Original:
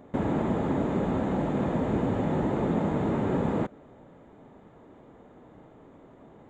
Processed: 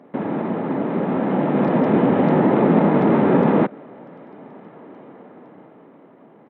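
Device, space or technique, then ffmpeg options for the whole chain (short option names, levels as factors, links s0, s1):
Bluetooth headset: -af "highpass=f=160:w=0.5412,highpass=f=160:w=1.3066,dynaudnorm=f=310:g=9:m=2.66,aresample=8000,aresample=44100,volume=1.5" -ar 48000 -c:a sbc -b:a 64k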